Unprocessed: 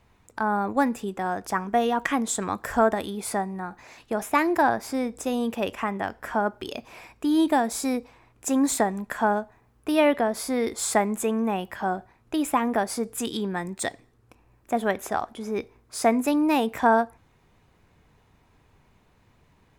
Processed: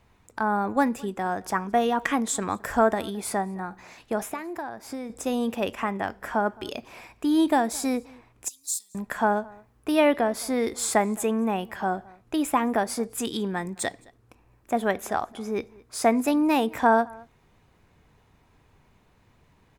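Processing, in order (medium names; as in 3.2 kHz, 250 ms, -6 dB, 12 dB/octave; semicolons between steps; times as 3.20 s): 4.26–5.10 s: compression 10:1, threshold -31 dBFS, peak gain reduction 15 dB; 8.48–8.95 s: inverse Chebyshev high-pass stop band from 1.8 kHz, stop band 50 dB; echo from a far wall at 37 m, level -24 dB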